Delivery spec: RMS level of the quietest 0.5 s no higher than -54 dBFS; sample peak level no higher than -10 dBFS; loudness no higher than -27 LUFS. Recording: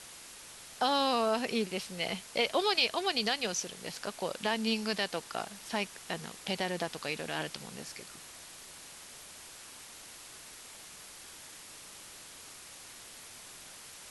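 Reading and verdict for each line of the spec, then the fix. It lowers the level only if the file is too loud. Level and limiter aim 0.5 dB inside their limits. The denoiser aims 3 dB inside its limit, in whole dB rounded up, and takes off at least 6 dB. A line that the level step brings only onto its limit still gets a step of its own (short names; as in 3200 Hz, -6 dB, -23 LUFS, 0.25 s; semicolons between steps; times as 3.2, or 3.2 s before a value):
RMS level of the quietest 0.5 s -50 dBFS: fail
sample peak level -13.0 dBFS: OK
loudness -32.5 LUFS: OK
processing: denoiser 7 dB, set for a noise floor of -50 dBFS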